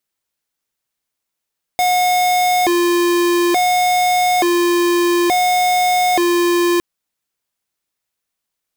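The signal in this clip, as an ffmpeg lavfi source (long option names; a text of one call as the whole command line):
ffmpeg -f lavfi -i "aevalsrc='0.188*(2*lt(mod((536.5*t+188.5/0.57*(0.5-abs(mod(0.57*t,1)-0.5))),1),0.5)-1)':duration=5.01:sample_rate=44100" out.wav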